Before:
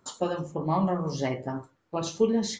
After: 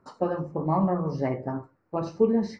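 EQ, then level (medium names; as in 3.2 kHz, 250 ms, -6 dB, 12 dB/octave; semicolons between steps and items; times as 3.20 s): boxcar filter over 13 samples; +2.0 dB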